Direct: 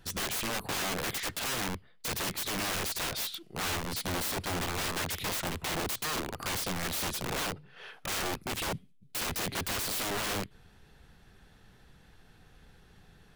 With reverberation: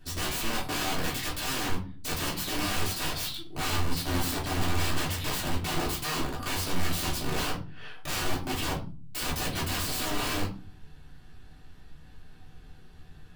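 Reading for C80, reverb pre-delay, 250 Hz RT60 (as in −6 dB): 15.5 dB, 3 ms, can't be measured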